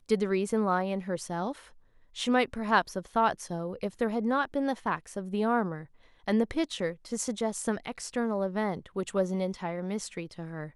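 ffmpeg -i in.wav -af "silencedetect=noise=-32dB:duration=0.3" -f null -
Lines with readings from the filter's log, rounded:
silence_start: 1.52
silence_end: 2.18 | silence_duration: 0.66
silence_start: 5.81
silence_end: 6.28 | silence_duration: 0.47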